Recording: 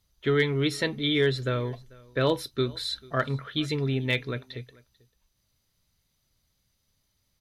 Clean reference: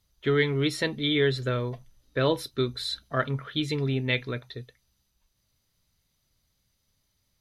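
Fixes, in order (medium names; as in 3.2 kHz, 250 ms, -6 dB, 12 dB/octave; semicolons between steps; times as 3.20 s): clip repair -14.5 dBFS; inverse comb 442 ms -24 dB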